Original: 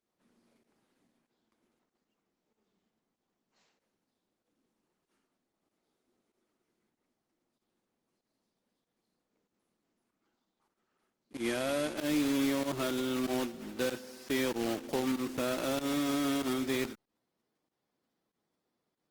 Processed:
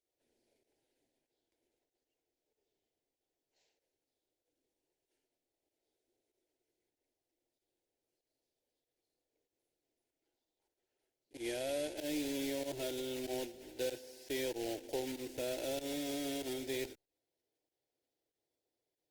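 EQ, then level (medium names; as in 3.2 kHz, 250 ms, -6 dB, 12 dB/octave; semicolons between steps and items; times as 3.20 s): static phaser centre 490 Hz, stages 4; -3.5 dB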